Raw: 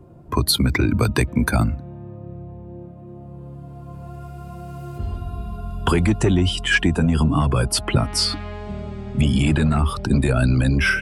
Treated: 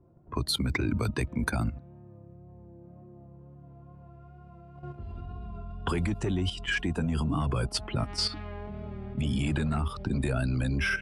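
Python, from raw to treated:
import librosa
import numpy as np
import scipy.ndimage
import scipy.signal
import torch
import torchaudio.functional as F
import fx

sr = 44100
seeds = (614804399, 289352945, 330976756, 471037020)

y = fx.wow_flutter(x, sr, seeds[0], rate_hz=2.1, depth_cents=28.0)
y = fx.env_lowpass(y, sr, base_hz=1600.0, full_db=-13.0)
y = fx.level_steps(y, sr, step_db=11)
y = y * 10.0 ** (-5.5 / 20.0)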